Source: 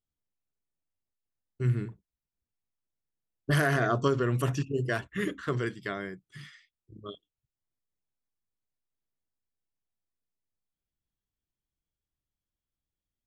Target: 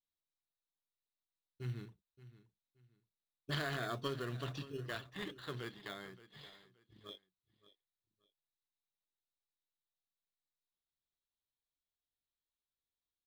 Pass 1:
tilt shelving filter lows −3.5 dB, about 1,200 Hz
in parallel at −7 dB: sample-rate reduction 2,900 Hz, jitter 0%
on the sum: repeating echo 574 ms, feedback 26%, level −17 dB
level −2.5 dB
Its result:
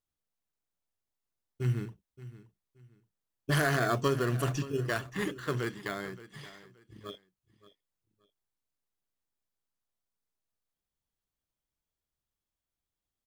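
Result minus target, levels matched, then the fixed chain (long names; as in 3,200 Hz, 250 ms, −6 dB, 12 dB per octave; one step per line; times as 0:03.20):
4,000 Hz band −7.0 dB
transistor ladder low-pass 4,200 Hz, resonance 75%
tilt shelving filter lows −3.5 dB, about 1,200 Hz
in parallel at −7 dB: sample-rate reduction 2,900 Hz, jitter 0%
on the sum: repeating echo 574 ms, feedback 26%, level −17 dB
level −2.5 dB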